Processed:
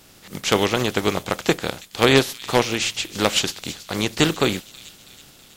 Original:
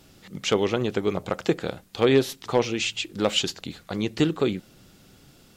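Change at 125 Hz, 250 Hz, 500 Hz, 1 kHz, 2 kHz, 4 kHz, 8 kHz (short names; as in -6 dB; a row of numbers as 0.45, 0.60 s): +4.0, +2.5, +2.0, +7.0, +8.5, +6.0, +8.5 dB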